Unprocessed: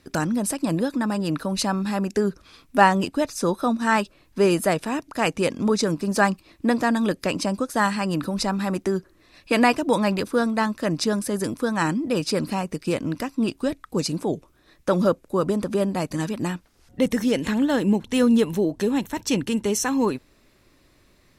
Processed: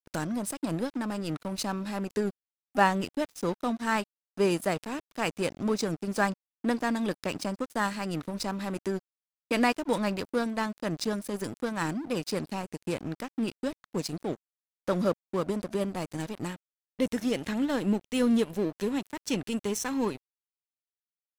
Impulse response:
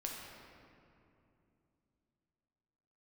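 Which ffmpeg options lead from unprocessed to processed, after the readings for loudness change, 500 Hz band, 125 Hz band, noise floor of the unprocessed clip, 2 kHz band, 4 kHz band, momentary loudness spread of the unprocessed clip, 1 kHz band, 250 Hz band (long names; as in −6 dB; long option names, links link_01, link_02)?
−7.5 dB, −7.0 dB, −7.5 dB, −59 dBFS, −7.0 dB, −7.0 dB, 7 LU, −7.5 dB, −7.5 dB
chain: -af "aeval=exprs='sgn(val(0))*max(abs(val(0))-0.0237,0)':channel_layout=same,equalizer=frequency=1100:width_type=o:width=1.5:gain=-2,volume=-5dB"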